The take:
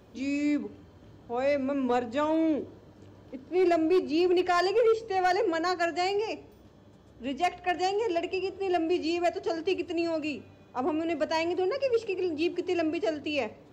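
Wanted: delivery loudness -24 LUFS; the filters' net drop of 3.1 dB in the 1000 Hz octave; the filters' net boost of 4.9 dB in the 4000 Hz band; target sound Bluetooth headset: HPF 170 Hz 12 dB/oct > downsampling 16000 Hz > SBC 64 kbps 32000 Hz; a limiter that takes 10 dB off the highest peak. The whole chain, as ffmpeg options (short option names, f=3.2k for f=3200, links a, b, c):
-af "equalizer=f=1k:t=o:g=-5.5,equalizer=f=4k:t=o:g=7,alimiter=level_in=2.5dB:limit=-24dB:level=0:latency=1,volume=-2.5dB,highpass=170,aresample=16000,aresample=44100,volume=10.5dB" -ar 32000 -c:a sbc -b:a 64k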